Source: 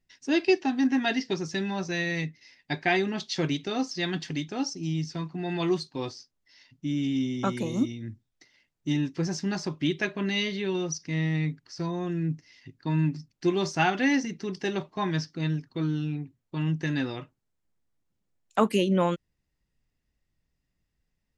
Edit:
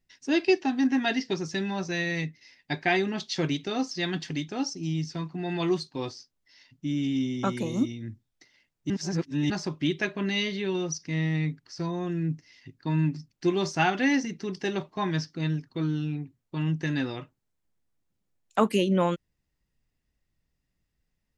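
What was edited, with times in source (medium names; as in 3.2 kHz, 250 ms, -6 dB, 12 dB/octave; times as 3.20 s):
8.90–9.50 s: reverse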